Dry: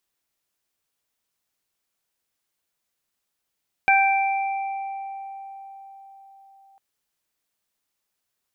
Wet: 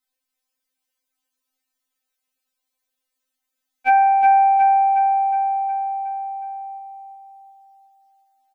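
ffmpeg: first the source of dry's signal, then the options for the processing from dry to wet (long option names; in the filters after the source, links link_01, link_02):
-f lavfi -i "aevalsrc='0.158*pow(10,-3*t/4.81)*sin(2*PI*783*t)+0.0891*pow(10,-3*t/0.83)*sin(2*PI*1566*t)+0.158*pow(10,-3*t/2.1)*sin(2*PI*2349*t)':duration=2.9:sample_rate=44100"
-filter_complex "[0:a]asplit=2[link_01][link_02];[link_02]aecho=0:1:364|728|1092|1456|1820|2184|2548:0.501|0.271|0.146|0.0789|0.0426|0.023|0.0124[link_03];[link_01][link_03]amix=inputs=2:normalize=0,afftfilt=real='re*3.46*eq(mod(b,12),0)':imag='im*3.46*eq(mod(b,12),0)':win_size=2048:overlap=0.75"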